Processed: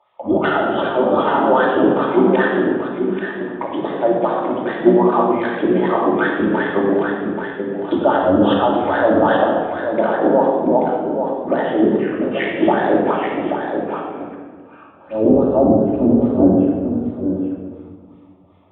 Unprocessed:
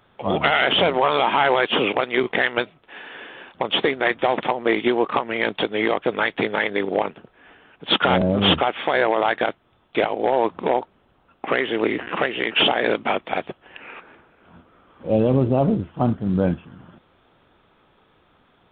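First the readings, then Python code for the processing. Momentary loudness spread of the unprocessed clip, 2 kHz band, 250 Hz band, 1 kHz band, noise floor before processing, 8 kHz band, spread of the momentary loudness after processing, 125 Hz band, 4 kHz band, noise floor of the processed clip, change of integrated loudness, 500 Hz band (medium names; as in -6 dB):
14 LU, -1.5 dB, +9.0 dB, +4.0 dB, -60 dBFS, no reading, 10 LU, +1.0 dB, -11.5 dB, -44 dBFS, +4.0 dB, +6.0 dB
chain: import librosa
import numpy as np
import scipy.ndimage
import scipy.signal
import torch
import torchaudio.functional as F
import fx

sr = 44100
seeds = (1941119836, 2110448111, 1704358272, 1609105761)

p1 = fx.octave_divider(x, sr, octaves=1, level_db=4.0)
p2 = scipy.signal.sosfilt(scipy.signal.butter(2, 69.0, 'highpass', fs=sr, output='sos'), p1)
p3 = fx.peak_eq(p2, sr, hz=120.0, db=-10.0, octaves=0.6)
p4 = fx.env_phaser(p3, sr, low_hz=260.0, high_hz=2200.0, full_db=-17.5)
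p5 = fx.filter_lfo_bandpass(p4, sr, shape='sine', hz=2.6, low_hz=290.0, high_hz=1800.0, q=3.0)
p6 = p5 + fx.echo_single(p5, sr, ms=833, db=-6.5, dry=0)
p7 = fx.room_shoebox(p6, sr, seeds[0], volume_m3=1600.0, walls='mixed', distance_m=2.6)
y = p7 * librosa.db_to_amplitude(8.5)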